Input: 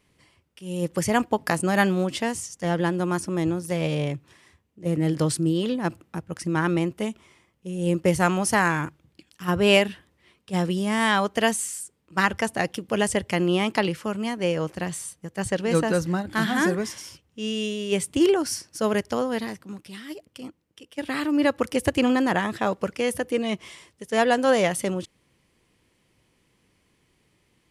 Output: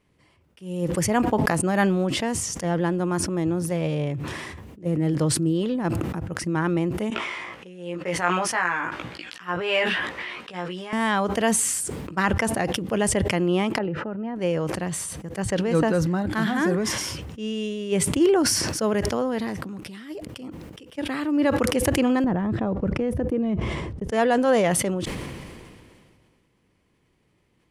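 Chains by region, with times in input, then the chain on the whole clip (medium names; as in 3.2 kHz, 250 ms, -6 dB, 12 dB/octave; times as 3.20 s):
7.10–10.93 s: band-pass filter 1.9 kHz, Q 0.78 + doubling 17 ms -3.5 dB
13.78–14.36 s: low-pass 1.5 kHz + compression, threshold -25 dBFS + comb of notches 1.1 kHz
22.24–24.12 s: tilt EQ -4.5 dB/octave + compression 4:1, threshold -21 dBFS + gate -38 dBFS, range -15 dB
whole clip: treble shelf 2.3 kHz -8.5 dB; decay stretcher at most 27 dB/s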